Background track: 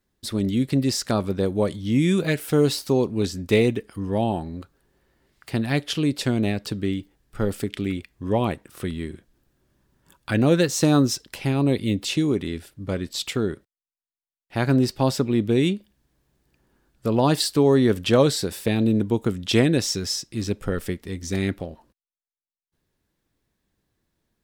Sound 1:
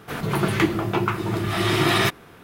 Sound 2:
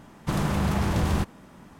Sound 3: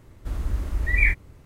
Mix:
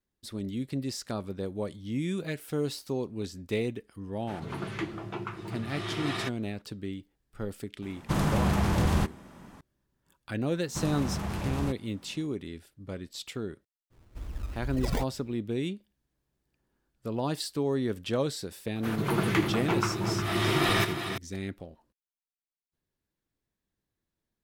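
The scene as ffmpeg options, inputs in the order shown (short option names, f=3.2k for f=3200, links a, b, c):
-filter_complex "[1:a]asplit=2[a][b];[2:a]asplit=2[c][d];[0:a]volume=-11.5dB[e];[a]lowpass=8.1k[f];[3:a]acrusher=samples=24:mix=1:aa=0.000001:lfo=1:lforange=24:lforate=2.2[g];[b]aecho=1:1:77|357:0.237|0.355[h];[f]atrim=end=2.43,asetpts=PTS-STARTPTS,volume=-14dB,afade=t=in:d=0.004:c=hsin,afade=t=out:st=2.426:d=0.004:c=hsin,adelay=4190[i];[c]atrim=end=1.79,asetpts=PTS-STARTPTS,volume=-1dB,afade=t=in:d=0.004:c=hsin,afade=t=out:st=1.786:d=0.004:c=hsin,adelay=7820[j];[d]atrim=end=1.79,asetpts=PTS-STARTPTS,volume=-8.5dB,afade=t=in:d=0.004:c=hsin,afade=t=out:st=1.786:d=0.004:c=hsin,adelay=10480[k];[g]atrim=end=1.45,asetpts=PTS-STARTPTS,volume=-10dB,afade=t=in:d=0.02,afade=t=out:st=1.43:d=0.02,adelay=13900[l];[h]atrim=end=2.43,asetpts=PTS-STARTPTS,volume=-6dB,afade=t=in:d=0.004:c=hsin,afade=t=out:st=2.426:d=0.004:c=hsin,adelay=18750[m];[e][i][j][k][l][m]amix=inputs=6:normalize=0"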